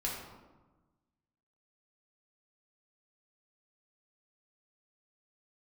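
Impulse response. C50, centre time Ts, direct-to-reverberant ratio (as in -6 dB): 2.0 dB, 59 ms, -4.5 dB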